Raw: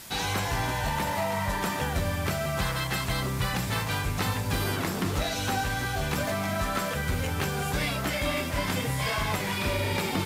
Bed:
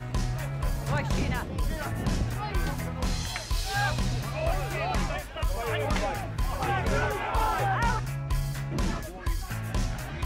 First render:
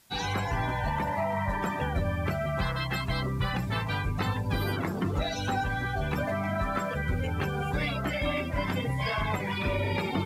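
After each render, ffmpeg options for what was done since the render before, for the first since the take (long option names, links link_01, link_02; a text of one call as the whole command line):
ffmpeg -i in.wav -af "afftdn=noise_reduction=17:noise_floor=-32" out.wav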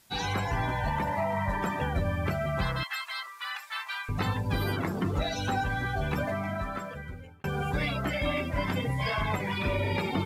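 ffmpeg -i in.wav -filter_complex "[0:a]asettb=1/sr,asplit=3[link_01][link_02][link_03];[link_01]atrim=end=2.834[link_04];[link_02]atrim=start=2.83:end=4.09,asetpts=PTS-STARTPTS,afade=type=in:duration=0.004:curve=qsin,afade=type=out:start_time=1.256:duration=0.004:curve=qsin,highpass=frequency=1100:width=0.5412,highpass=frequency=1100:width=1.3066[link_05];[link_03]atrim=start=4.086[link_06];[link_04][link_05]acrossfade=duration=0.004:curve1=hsin:curve2=qsin[link_07];[link_07][link_06]acrossfade=duration=0.004:curve1=qsin:curve2=hsin,asplit=2[link_08][link_09];[link_08]atrim=end=7.44,asetpts=PTS-STARTPTS,afade=type=out:start_time=6.16:duration=1.28[link_10];[link_09]atrim=start=7.44,asetpts=PTS-STARTPTS,afade=type=in:duration=0.004:curve=hsin[link_11];[link_10][link_11]concat=n=2:v=0:a=1" out.wav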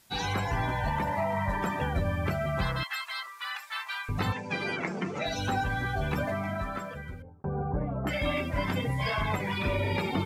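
ffmpeg -i in.wav -filter_complex "[0:a]asettb=1/sr,asplit=3[link_01][link_02][link_03];[link_01]atrim=end=4.324[link_04];[link_02]atrim=start=4.32:end=5.26,asetpts=PTS-STARTPTS,afade=type=in:duration=0.004:curve=qsin,afade=type=out:start_time=0.936:duration=0.004:curve=qsin,highpass=frequency=170:width=0.5412,highpass=frequency=170:width=1.3066,equalizer=frequency=280:width_type=q:width=4:gain=-8,equalizer=frequency=1100:width_type=q:width=4:gain=-4,equalizer=frequency=2300:width_type=q:width=4:gain=10,equalizer=frequency=3700:width_type=q:width=4:gain=-5,equalizer=frequency=6100:width_type=q:width=4:gain=5,lowpass=frequency=7600:width=0.5412,lowpass=frequency=7600:width=1.3066[link_05];[link_03]atrim=start=5.256[link_06];[link_04][link_05]acrossfade=duration=0.004:curve1=hsin:curve2=qsin[link_07];[link_07][link_06]acrossfade=duration=0.004:curve1=qsin:curve2=hsin,asettb=1/sr,asplit=3[link_08][link_09][link_10];[link_08]atrim=end=7.224[link_11];[link_09]atrim=start=7.22:end=8.07,asetpts=PTS-STARTPTS,afade=type=in:duration=0.004:curve=qsin,afade=type=out:start_time=0.846:duration=0.004:curve=qsin,lowpass=frequency=1000:width=0.5412,lowpass=frequency=1000:width=1.3066[link_12];[link_10]atrim=start=8.066[link_13];[link_11][link_12]acrossfade=duration=0.004:curve1=hsin:curve2=qsin[link_14];[link_14][link_13]acrossfade=duration=0.004:curve1=qsin:curve2=hsin" out.wav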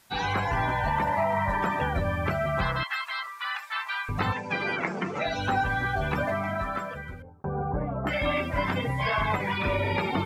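ffmpeg -i in.wav -filter_complex "[0:a]acrossover=split=4500[link_01][link_02];[link_02]acompressor=threshold=-53dB:ratio=4:attack=1:release=60[link_03];[link_01][link_03]amix=inputs=2:normalize=0,equalizer=frequency=1200:width_type=o:width=2.4:gain=5.5" out.wav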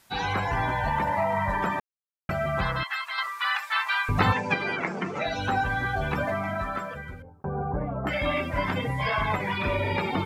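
ffmpeg -i in.wav -filter_complex "[0:a]asplit=5[link_01][link_02][link_03][link_04][link_05];[link_01]atrim=end=1.8,asetpts=PTS-STARTPTS,afade=type=out:start_time=1.796:duration=0.004:curve=hsin[link_06];[link_02]atrim=start=1.8:end=2.29,asetpts=PTS-STARTPTS,volume=0[link_07];[link_03]atrim=start=2.29:end=3.182,asetpts=PTS-STARTPTS,afade=type=in:duration=0.004:curve=hsin[link_08];[link_04]atrim=start=3.178:end=4.542,asetpts=PTS-STARTPTS,volume=5.5dB[link_09];[link_05]atrim=start=4.538[link_10];[link_06][link_07][link_08]concat=n=3:v=0:a=1[link_11];[link_11][link_09]acrossfade=duration=0.004:curve1=hsin:curve2=hsin[link_12];[link_12][link_10]acrossfade=duration=0.004:curve1=hsin:curve2=hsin" out.wav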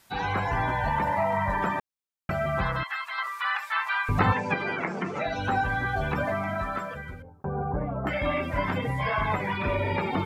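ffmpeg -i in.wav -filter_complex "[0:a]acrossover=split=2500[link_01][link_02];[link_02]acompressor=threshold=-44dB:ratio=4:attack=1:release=60[link_03];[link_01][link_03]amix=inputs=2:normalize=0" out.wav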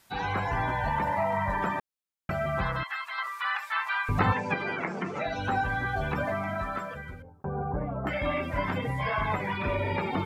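ffmpeg -i in.wav -af "volume=-2dB" out.wav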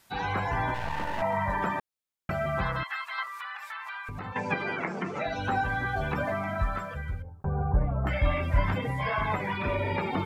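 ffmpeg -i in.wav -filter_complex "[0:a]asettb=1/sr,asplit=3[link_01][link_02][link_03];[link_01]atrim=end=0.744[link_04];[link_02]atrim=start=0.74:end=1.22,asetpts=PTS-STARTPTS,afade=type=in:duration=0.004:curve=qsin,afade=type=out:start_time=0.476:duration=0.004:curve=qsin,aeval=exprs='max(val(0),0)':channel_layout=same[link_05];[link_03]atrim=start=1.216[link_06];[link_04][link_05]acrossfade=duration=0.004:curve1=hsin:curve2=qsin[link_07];[link_07][link_06]acrossfade=duration=0.004:curve1=qsin:curve2=hsin,asettb=1/sr,asplit=3[link_08][link_09][link_10];[link_08]atrim=end=3.234[link_11];[link_09]atrim=start=3.23:end=4.36,asetpts=PTS-STARTPTS,afade=type=in:duration=0.004:curve=qsin,afade=type=out:start_time=1.126:duration=0.004:curve=qsin,acompressor=threshold=-35dB:ratio=6:attack=3.2:release=140:knee=1:detection=peak[link_12];[link_10]atrim=start=4.356[link_13];[link_11][link_12]acrossfade=duration=0.004:curve1=hsin:curve2=qsin[link_14];[link_14][link_13]acrossfade=duration=0.004:curve1=qsin:curve2=hsin,asplit=3[link_15][link_16][link_17];[link_15]afade=type=out:start_time=6.58:duration=0.02[link_18];[link_16]asubboost=boost=5:cutoff=110,afade=type=in:start_time=6.58:duration=0.02,afade=type=out:start_time=8.74:duration=0.02[link_19];[link_17]afade=type=in:start_time=8.74:duration=0.02[link_20];[link_18][link_19][link_20]amix=inputs=3:normalize=0" out.wav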